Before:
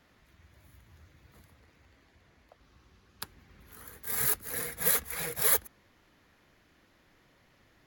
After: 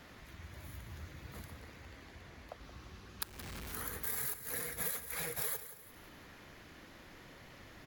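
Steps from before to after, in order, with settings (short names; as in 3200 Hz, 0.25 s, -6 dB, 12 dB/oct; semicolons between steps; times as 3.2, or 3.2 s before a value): 3.23–3.74 infinite clipping; compressor 8:1, threshold -46 dBFS, peak gain reduction 25 dB; feedback echo 0.174 s, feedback 42%, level -13 dB; gain +9.5 dB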